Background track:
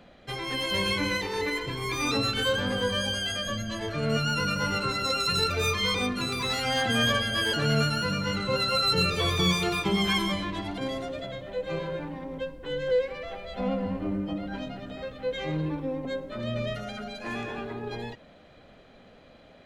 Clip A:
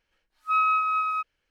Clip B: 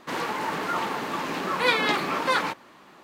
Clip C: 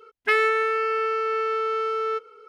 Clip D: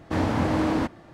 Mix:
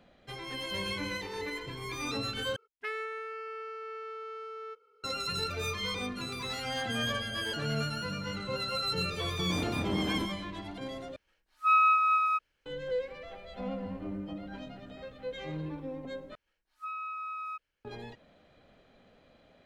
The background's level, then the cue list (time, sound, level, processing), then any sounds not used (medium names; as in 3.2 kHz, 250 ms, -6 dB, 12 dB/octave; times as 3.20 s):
background track -8 dB
2.56 s: replace with C -16.5 dB
9.39 s: add D -9.5 dB + local Wiener filter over 41 samples
11.16 s: replace with A -0.5 dB
16.35 s: replace with A -7 dB + compression, threshold -29 dBFS
not used: B